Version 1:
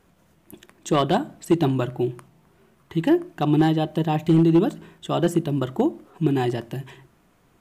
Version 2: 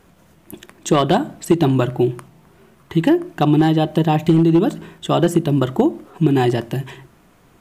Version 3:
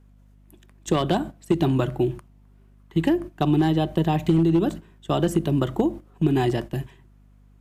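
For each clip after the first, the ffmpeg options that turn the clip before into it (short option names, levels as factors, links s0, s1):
-af "acompressor=threshold=0.126:ratio=6,volume=2.51"
-filter_complex "[0:a]acrossover=split=280|3000[s0][s1][s2];[s1]acompressor=threshold=0.178:ratio=6[s3];[s0][s3][s2]amix=inputs=3:normalize=0,aeval=exprs='val(0)+0.0178*(sin(2*PI*50*n/s)+sin(2*PI*2*50*n/s)/2+sin(2*PI*3*50*n/s)/3+sin(2*PI*4*50*n/s)/4+sin(2*PI*5*50*n/s)/5)':c=same,agate=range=0.251:threshold=0.0501:ratio=16:detection=peak,volume=0.562"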